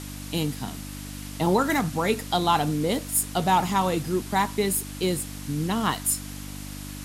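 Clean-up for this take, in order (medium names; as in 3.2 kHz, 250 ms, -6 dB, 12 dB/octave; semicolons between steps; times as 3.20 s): de-hum 49.5 Hz, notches 6; noise reduction 30 dB, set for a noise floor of -37 dBFS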